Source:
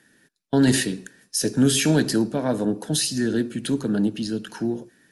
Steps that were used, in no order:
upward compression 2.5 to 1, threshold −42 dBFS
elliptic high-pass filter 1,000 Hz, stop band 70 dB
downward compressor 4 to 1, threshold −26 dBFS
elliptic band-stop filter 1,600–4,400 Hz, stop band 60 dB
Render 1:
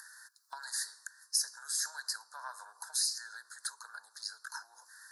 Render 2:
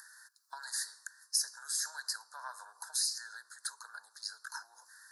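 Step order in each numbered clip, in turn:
elliptic band-stop filter, then downward compressor, then elliptic high-pass filter, then upward compression
downward compressor, then elliptic high-pass filter, then upward compression, then elliptic band-stop filter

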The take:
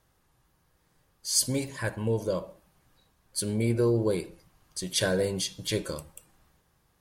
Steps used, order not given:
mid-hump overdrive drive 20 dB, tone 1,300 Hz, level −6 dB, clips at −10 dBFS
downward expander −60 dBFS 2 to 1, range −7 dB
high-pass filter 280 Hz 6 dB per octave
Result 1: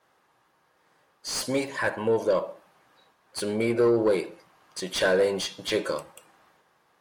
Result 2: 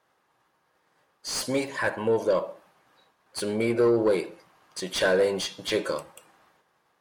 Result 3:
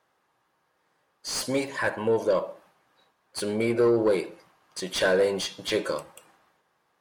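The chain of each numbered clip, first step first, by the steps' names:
high-pass filter, then mid-hump overdrive, then downward expander
downward expander, then high-pass filter, then mid-hump overdrive
high-pass filter, then downward expander, then mid-hump overdrive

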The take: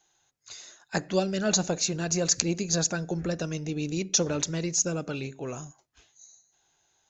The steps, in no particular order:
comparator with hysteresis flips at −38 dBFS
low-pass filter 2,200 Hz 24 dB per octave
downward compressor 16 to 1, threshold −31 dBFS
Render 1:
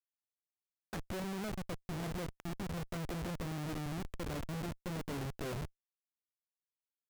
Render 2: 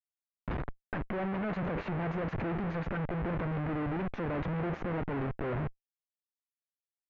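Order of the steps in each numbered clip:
downward compressor, then low-pass filter, then comparator with hysteresis
comparator with hysteresis, then downward compressor, then low-pass filter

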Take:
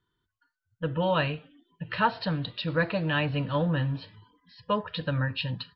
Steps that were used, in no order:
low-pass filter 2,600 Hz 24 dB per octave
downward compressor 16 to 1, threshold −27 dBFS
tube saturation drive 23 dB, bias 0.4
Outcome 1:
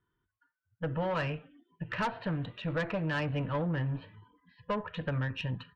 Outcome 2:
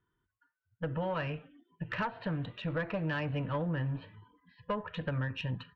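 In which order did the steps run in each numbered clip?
low-pass filter, then tube saturation, then downward compressor
downward compressor, then low-pass filter, then tube saturation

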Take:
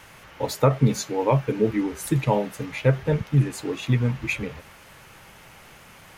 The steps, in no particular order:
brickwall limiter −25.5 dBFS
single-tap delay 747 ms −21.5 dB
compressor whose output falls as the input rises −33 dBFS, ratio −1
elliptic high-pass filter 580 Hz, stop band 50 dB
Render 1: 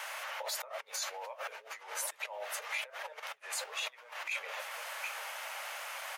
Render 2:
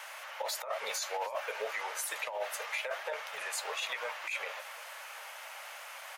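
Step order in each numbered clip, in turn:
single-tap delay, then compressor whose output falls as the input rises, then brickwall limiter, then elliptic high-pass filter
elliptic high-pass filter, then compressor whose output falls as the input rises, then brickwall limiter, then single-tap delay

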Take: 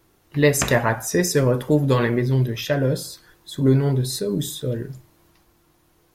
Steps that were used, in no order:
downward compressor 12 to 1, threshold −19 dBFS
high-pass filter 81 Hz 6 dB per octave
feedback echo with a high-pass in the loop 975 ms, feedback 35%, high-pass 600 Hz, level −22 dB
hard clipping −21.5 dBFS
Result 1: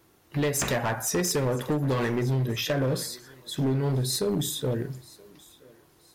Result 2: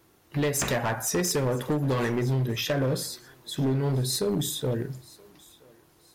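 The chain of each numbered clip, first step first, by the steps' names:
feedback echo with a high-pass in the loop, then downward compressor, then high-pass filter, then hard clipping
downward compressor, then high-pass filter, then hard clipping, then feedback echo with a high-pass in the loop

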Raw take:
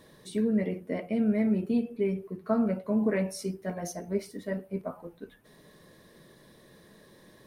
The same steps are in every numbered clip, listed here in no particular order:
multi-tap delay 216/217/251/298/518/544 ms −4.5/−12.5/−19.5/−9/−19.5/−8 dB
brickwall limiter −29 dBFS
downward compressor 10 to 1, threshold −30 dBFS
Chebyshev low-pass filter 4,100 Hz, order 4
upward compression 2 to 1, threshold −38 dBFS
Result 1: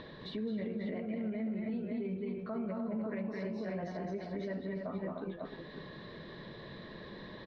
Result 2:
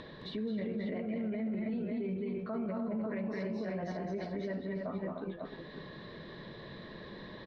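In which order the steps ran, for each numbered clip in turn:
upward compression, then multi-tap delay, then downward compressor, then brickwall limiter, then Chebyshev low-pass filter
Chebyshev low-pass filter, then upward compression, then multi-tap delay, then brickwall limiter, then downward compressor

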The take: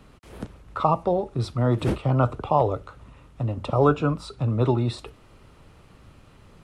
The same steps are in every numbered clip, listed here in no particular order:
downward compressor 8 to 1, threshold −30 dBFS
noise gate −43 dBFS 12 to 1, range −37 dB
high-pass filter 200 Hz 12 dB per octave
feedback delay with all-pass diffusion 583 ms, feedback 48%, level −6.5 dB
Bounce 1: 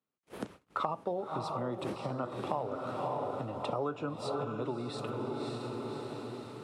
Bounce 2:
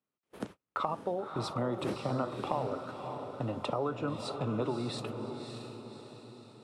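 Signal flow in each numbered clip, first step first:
feedback delay with all-pass diffusion, then downward compressor, then noise gate, then high-pass filter
high-pass filter, then downward compressor, then noise gate, then feedback delay with all-pass diffusion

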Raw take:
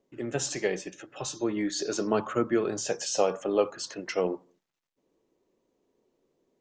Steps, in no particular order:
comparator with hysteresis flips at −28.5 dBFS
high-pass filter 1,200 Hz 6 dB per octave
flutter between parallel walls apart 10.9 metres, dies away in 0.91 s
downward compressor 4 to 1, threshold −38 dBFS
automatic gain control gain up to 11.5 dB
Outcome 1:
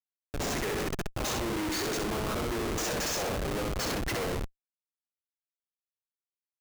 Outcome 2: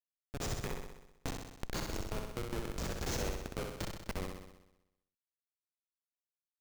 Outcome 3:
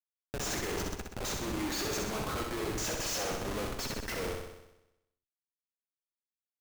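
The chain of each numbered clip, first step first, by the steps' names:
high-pass filter, then downward compressor, then flutter between parallel walls, then automatic gain control, then comparator with hysteresis
high-pass filter, then comparator with hysteresis, then automatic gain control, then downward compressor, then flutter between parallel walls
high-pass filter, then automatic gain control, then comparator with hysteresis, then downward compressor, then flutter between parallel walls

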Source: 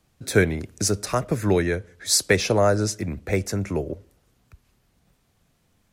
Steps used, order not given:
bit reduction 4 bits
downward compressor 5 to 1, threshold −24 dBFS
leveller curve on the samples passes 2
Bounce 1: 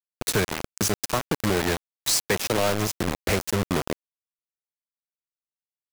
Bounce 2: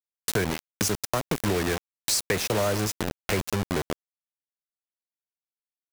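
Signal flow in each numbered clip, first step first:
leveller curve on the samples, then downward compressor, then bit reduction
bit reduction, then leveller curve on the samples, then downward compressor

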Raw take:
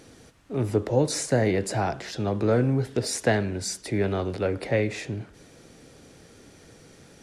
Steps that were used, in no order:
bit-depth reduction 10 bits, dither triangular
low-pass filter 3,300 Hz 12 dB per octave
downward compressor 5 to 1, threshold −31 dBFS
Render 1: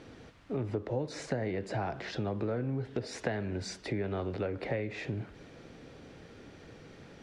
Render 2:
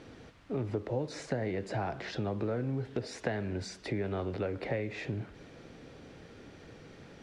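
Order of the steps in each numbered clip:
bit-depth reduction, then low-pass filter, then downward compressor
downward compressor, then bit-depth reduction, then low-pass filter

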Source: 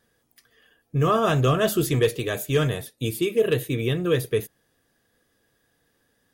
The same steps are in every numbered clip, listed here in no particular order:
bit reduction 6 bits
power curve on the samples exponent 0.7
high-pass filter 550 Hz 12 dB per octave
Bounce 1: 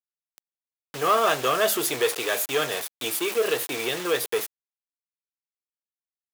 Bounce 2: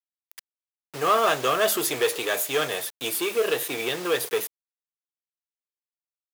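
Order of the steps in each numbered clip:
bit reduction, then power curve on the samples, then high-pass filter
power curve on the samples, then bit reduction, then high-pass filter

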